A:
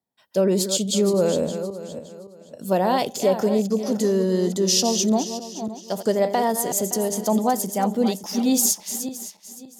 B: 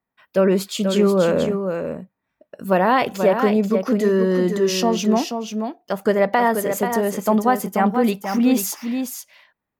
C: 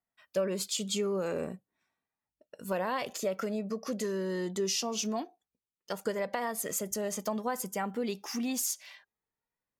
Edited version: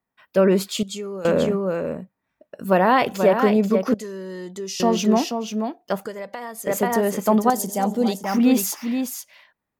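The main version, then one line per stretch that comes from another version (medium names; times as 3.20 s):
B
0.83–1.25 s: from C
3.94–4.80 s: from C
6.06–6.67 s: from C
7.50–8.24 s: from A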